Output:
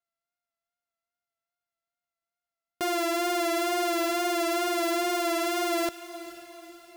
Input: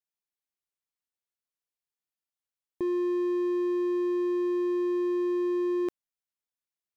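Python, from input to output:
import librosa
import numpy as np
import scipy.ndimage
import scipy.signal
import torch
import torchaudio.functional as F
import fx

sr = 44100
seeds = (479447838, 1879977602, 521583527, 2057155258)

y = np.r_[np.sort(x[:len(x) // 64 * 64].reshape(-1, 64), axis=1).ravel(), x[len(x) // 64 * 64:]]
y = fx.wow_flutter(y, sr, seeds[0], rate_hz=2.1, depth_cents=36.0)
y = fx.echo_diffused(y, sr, ms=464, feedback_pct=53, wet_db=-15.0)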